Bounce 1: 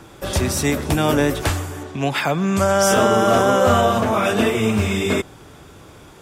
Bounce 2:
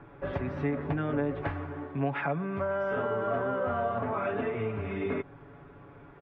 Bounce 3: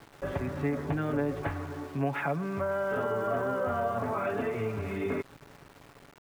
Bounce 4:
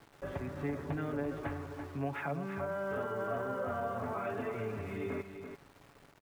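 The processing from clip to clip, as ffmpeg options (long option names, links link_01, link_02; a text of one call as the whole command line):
ffmpeg -i in.wav -af "lowpass=frequency=2100:width=0.5412,lowpass=frequency=2100:width=1.3066,acompressor=threshold=-21dB:ratio=4,aecho=1:1:7.1:0.65,volume=-8.5dB" out.wav
ffmpeg -i in.wav -af "aeval=exprs='val(0)*gte(abs(val(0)),0.00447)':channel_layout=same" out.wav
ffmpeg -i in.wav -af "aecho=1:1:337:0.376,volume=-6.5dB" out.wav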